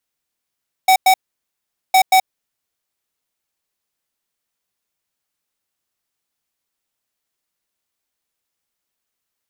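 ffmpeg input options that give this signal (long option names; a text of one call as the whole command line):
ffmpeg -f lavfi -i "aevalsrc='0.299*(2*lt(mod(756*t,1),0.5)-1)*clip(min(mod(mod(t,1.06),0.18),0.08-mod(mod(t,1.06),0.18))/0.005,0,1)*lt(mod(t,1.06),0.36)':duration=2.12:sample_rate=44100" out.wav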